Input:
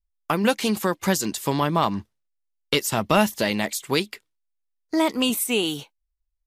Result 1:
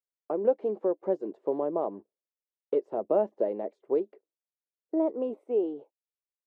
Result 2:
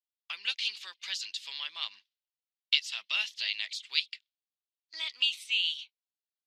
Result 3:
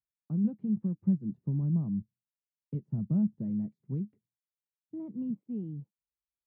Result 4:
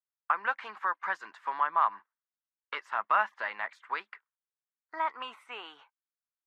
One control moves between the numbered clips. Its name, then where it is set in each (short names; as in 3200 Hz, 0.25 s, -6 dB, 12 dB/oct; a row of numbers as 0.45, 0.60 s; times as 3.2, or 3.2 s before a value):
Butterworth band-pass, frequency: 470, 3500, 150, 1300 Hz